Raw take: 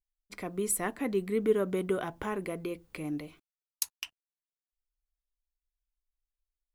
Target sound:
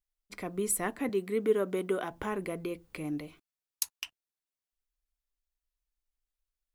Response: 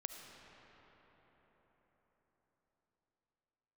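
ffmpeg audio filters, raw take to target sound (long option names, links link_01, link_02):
-filter_complex "[0:a]asettb=1/sr,asplit=3[link_01][link_02][link_03];[link_01]atrim=end=1.094[link_04];[link_02]atrim=start=1.09:end=2.11,asetpts=PTS-STARTPTS,afade=type=in:duration=0.004:curve=qsin,afade=type=out:start_time=1.016:duration=0.004:curve=qsin,highpass=220[link_05];[link_03]atrim=start=2.106[link_06];[link_04][link_05]acrossfade=duration=0.004:curve1=hsin:curve2=qsin[link_07];[link_07][link_06]acrossfade=duration=0.004:curve1=qsin:curve2=hsin"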